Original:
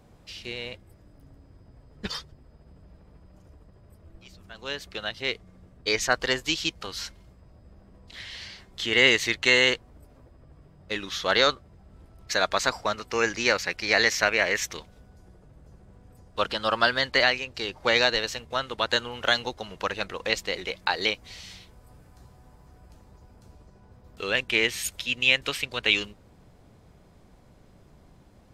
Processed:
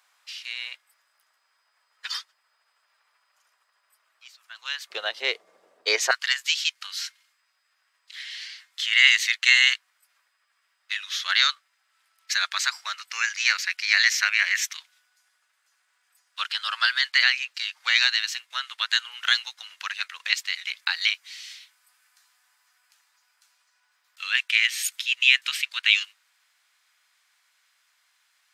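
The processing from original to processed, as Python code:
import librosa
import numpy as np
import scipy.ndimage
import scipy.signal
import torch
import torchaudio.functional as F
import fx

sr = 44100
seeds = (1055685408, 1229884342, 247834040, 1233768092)

y = fx.highpass(x, sr, hz=fx.steps((0.0, 1200.0), (4.9, 460.0), (6.11, 1500.0)), slope=24)
y = F.gain(torch.from_numpy(y), 3.5).numpy()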